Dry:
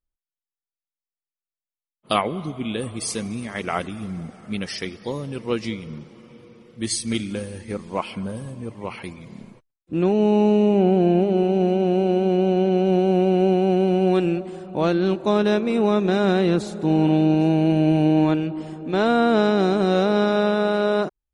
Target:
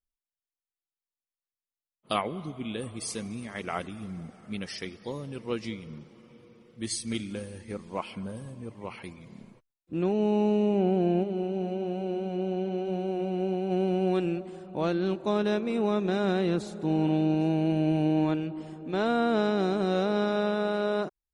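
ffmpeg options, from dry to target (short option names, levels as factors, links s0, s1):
-filter_complex "[0:a]asplit=3[s0][s1][s2];[s0]afade=t=out:st=11.22:d=0.02[s3];[s1]flanger=delay=6.5:depth=4.9:regen=-61:speed=1:shape=triangular,afade=t=in:st=11.22:d=0.02,afade=t=out:st=13.7:d=0.02[s4];[s2]afade=t=in:st=13.7:d=0.02[s5];[s3][s4][s5]amix=inputs=3:normalize=0,volume=0.422"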